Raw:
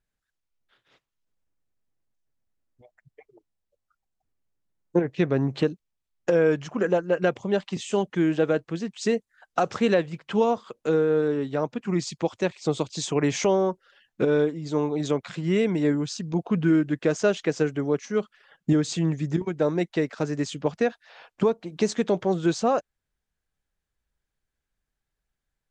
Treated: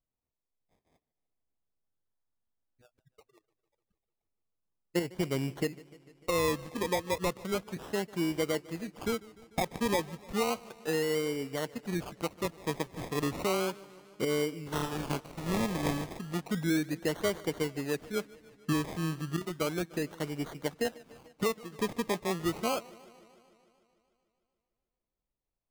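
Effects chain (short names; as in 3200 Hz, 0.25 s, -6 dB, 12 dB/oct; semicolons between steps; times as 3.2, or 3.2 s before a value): 14.71–16.1 spectral whitening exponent 0.3; decimation with a swept rate 24×, swing 60% 0.33 Hz; warbling echo 0.149 s, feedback 69%, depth 108 cents, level -21.5 dB; gain -8.5 dB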